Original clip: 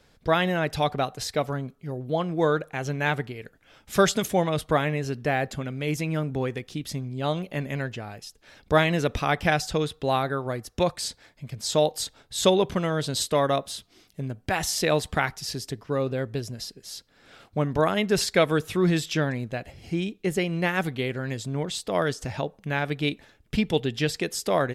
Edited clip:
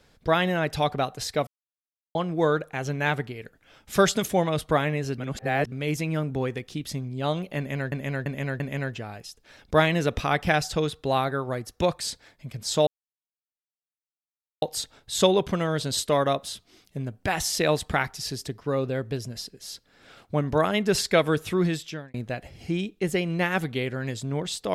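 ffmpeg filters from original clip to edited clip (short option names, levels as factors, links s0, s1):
-filter_complex "[0:a]asplit=10[s0][s1][s2][s3][s4][s5][s6][s7][s8][s9];[s0]atrim=end=1.47,asetpts=PTS-STARTPTS,afade=t=out:st=1.466:d=0.004:c=hsin[s10];[s1]atrim=start=1.47:end=2.15,asetpts=PTS-STARTPTS,volume=0[s11];[s2]atrim=start=2.15:end=5.182,asetpts=PTS-STARTPTS,afade=t=in:d=0.004:c=hsin[s12];[s3]atrim=start=5.178:end=5.722,asetpts=PTS-STARTPTS,areverse[s13];[s4]atrim=start=5.718:end=7.922[s14];[s5]atrim=start=7.578:end=7.922[s15];[s6]atrim=start=7.578:end=7.922[s16];[s7]atrim=start=7.578:end=11.85,asetpts=PTS-STARTPTS,afade=t=out:st=4.268:d=0.004:c=hsin,apad=pad_dur=1.75[s17];[s8]atrim=start=11.85:end=19.37,asetpts=PTS-STARTPTS,afade=t=in:d=0.004:c=hsin,afade=t=out:st=6.89:d=0.63[s18];[s9]atrim=start=19.37,asetpts=PTS-STARTPTS,afade=t=in:d=0.004:c=hsin[s19];[s10][s11][s12]concat=n=3:v=0:a=1[s20];[s20][s13]acrossfade=d=0.004:c1=hsin:c2=hsin[s21];[s21][s14]acrossfade=d=0.004:c1=hsin:c2=hsin[s22];[s22][s15]acrossfade=d=0.004:c1=hsin:c2=hsin[s23];[s23][s16]acrossfade=d=0.004:c1=hsin:c2=hsin[s24];[s17][s18][s19]concat=n=3:v=0:a=1[s25];[s24][s25]acrossfade=d=0.004:c1=hsin:c2=hsin"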